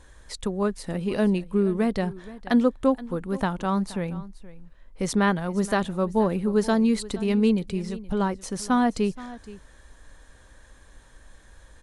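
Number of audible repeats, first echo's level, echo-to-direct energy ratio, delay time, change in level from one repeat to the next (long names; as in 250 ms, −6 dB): 1, −18.0 dB, −18.0 dB, 474 ms, repeats not evenly spaced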